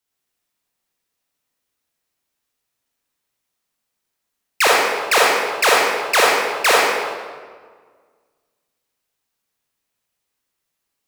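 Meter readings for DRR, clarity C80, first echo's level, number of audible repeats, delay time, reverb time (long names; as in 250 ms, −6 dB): −5.0 dB, 0.0 dB, no echo audible, no echo audible, no echo audible, 1.6 s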